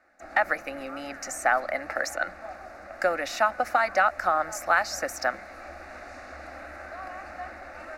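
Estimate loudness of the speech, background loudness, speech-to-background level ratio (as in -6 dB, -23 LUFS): -26.5 LUFS, -42.0 LUFS, 15.5 dB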